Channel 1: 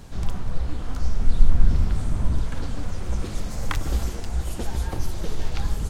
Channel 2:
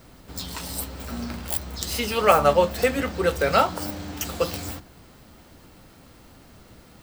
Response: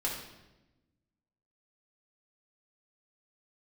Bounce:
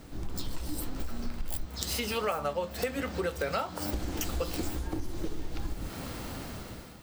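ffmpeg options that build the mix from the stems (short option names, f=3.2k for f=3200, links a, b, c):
-filter_complex "[0:a]equalizer=f=310:t=o:w=0.53:g=14.5,dynaudnorm=f=270:g=3:m=11.5dB,volume=-10.5dB,asplit=3[a][b][c];[a]atrim=end=1.66,asetpts=PTS-STARTPTS,afade=t=out:st=1.656:d=0.004:c=hsin[d];[b]atrim=start=1.66:end=3.93,asetpts=PTS-STARTPTS,volume=0[e];[c]atrim=start=3.93,asetpts=PTS-STARTPTS,afade=t=in:d=0.004:c=hsin[f];[d][e][f]concat=n=3:v=0:a=1[g];[1:a]dynaudnorm=f=400:g=5:m=16dB,volume=-3dB[h];[g][h]amix=inputs=2:normalize=0,acompressor=threshold=-29dB:ratio=6"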